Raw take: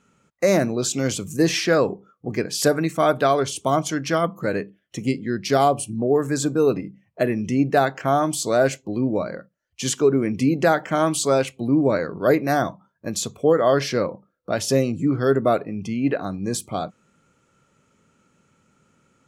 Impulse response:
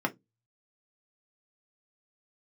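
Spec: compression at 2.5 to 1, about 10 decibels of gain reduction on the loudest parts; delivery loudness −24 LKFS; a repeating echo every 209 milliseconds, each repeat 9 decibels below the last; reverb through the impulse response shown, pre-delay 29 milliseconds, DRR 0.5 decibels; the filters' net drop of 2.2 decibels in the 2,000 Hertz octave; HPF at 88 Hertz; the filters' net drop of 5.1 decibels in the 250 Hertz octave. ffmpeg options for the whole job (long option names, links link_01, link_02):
-filter_complex "[0:a]highpass=88,equalizer=frequency=250:width_type=o:gain=-6.5,equalizer=frequency=2000:width_type=o:gain=-3,acompressor=threshold=-30dB:ratio=2.5,aecho=1:1:209|418|627|836:0.355|0.124|0.0435|0.0152,asplit=2[link_01][link_02];[1:a]atrim=start_sample=2205,adelay=29[link_03];[link_02][link_03]afir=irnorm=-1:irlink=0,volume=-9dB[link_04];[link_01][link_04]amix=inputs=2:normalize=0,volume=4dB"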